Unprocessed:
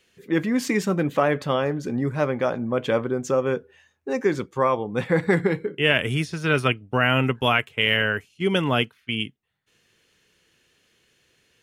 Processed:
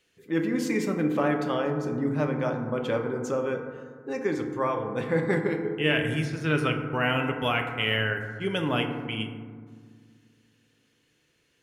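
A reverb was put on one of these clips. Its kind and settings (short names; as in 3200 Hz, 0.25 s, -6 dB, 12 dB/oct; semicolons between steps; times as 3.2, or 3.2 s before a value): FDN reverb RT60 1.8 s, low-frequency decay 1.4×, high-frequency decay 0.3×, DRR 3.5 dB; gain -6.5 dB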